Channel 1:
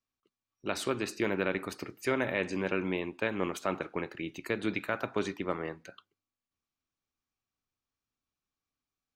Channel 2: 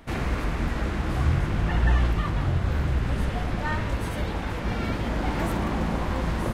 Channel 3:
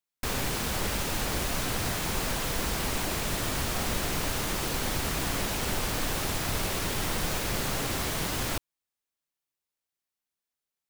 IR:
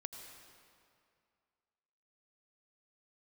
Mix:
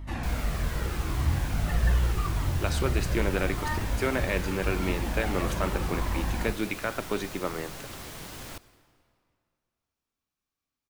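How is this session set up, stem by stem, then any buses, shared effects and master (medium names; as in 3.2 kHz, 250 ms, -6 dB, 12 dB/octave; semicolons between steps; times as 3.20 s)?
+1.5 dB, 1.95 s, no send, none
-1.0 dB, 0.00 s, no send, hum 50 Hz, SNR 11 dB; Shepard-style flanger falling 0.82 Hz
-13.0 dB, 0.00 s, send -6 dB, none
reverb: on, RT60 2.3 s, pre-delay 77 ms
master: none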